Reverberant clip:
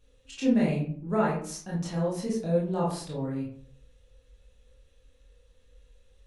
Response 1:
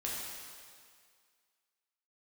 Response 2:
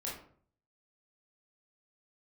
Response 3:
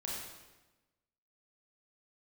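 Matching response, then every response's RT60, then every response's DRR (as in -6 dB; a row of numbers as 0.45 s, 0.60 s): 2; 2.0 s, 0.55 s, 1.1 s; -5.5 dB, -5.5 dB, -4.5 dB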